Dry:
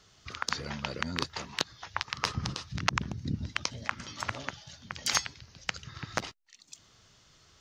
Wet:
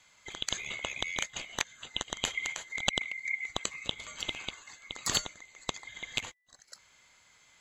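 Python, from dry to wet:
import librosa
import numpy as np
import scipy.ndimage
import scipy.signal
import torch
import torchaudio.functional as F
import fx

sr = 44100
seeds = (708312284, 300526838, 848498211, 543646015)

y = fx.band_swap(x, sr, width_hz=2000)
y = F.gain(torch.from_numpy(y), -1.5).numpy()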